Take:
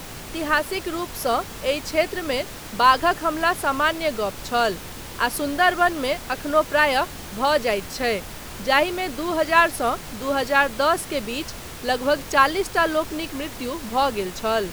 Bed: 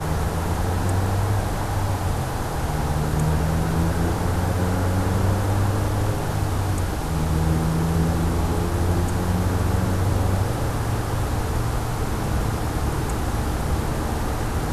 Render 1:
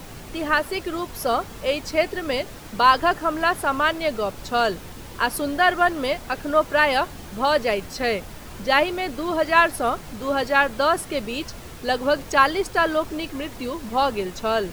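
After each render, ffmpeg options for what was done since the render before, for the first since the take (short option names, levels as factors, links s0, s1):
-af "afftdn=nr=6:nf=-37"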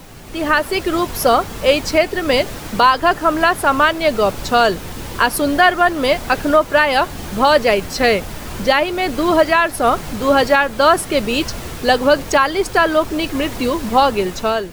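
-af "alimiter=limit=0.237:level=0:latency=1:release=417,dynaudnorm=f=120:g=7:m=4.22"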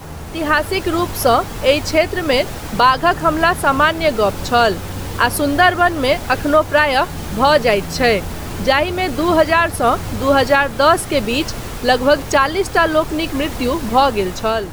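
-filter_complex "[1:a]volume=0.398[s0];[0:a][s0]amix=inputs=2:normalize=0"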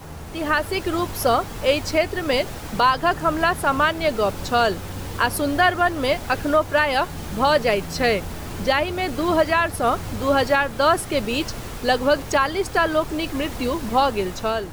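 -af "volume=0.531"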